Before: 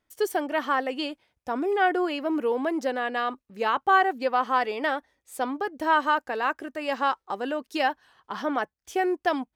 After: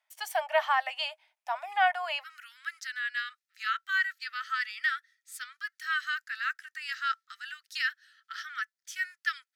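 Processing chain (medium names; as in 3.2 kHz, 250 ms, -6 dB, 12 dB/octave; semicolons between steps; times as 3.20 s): rippled Chebyshev high-pass 610 Hz, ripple 6 dB, from 2.22 s 1.3 kHz; trim +3 dB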